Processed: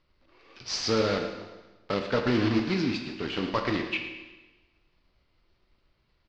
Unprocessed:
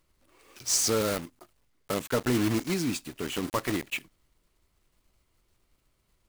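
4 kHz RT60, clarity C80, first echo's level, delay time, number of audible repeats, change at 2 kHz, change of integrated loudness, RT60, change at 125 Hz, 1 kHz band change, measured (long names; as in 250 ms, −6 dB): 1.1 s, 7.5 dB, −14.0 dB, 112 ms, 1, +3.0 dB, +0.5 dB, 1.2 s, +1.0 dB, +2.5 dB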